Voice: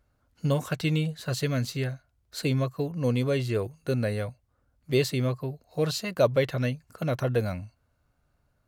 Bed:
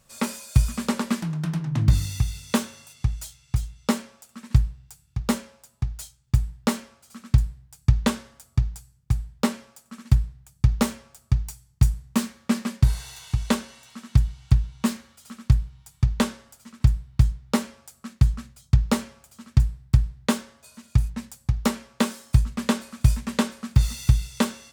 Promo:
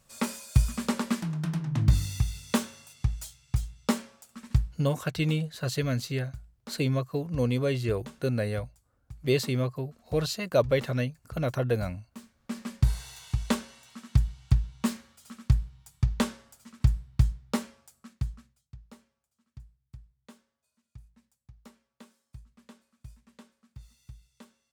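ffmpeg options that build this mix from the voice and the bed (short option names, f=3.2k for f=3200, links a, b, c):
-filter_complex "[0:a]adelay=4350,volume=-1dB[a];[1:a]volume=14.5dB,afade=t=out:st=4.42:d=0.5:silence=0.112202,afade=t=in:st=12.37:d=0.51:silence=0.125893,afade=t=out:st=17.23:d=1.48:silence=0.0562341[b];[a][b]amix=inputs=2:normalize=0"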